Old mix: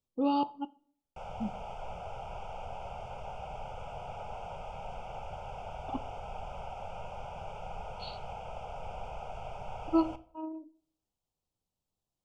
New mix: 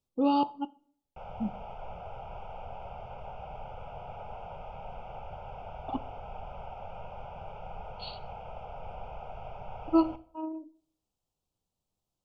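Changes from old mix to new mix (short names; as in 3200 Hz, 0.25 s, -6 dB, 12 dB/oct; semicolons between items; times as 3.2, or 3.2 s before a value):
speech +3.0 dB; background: add air absorption 240 m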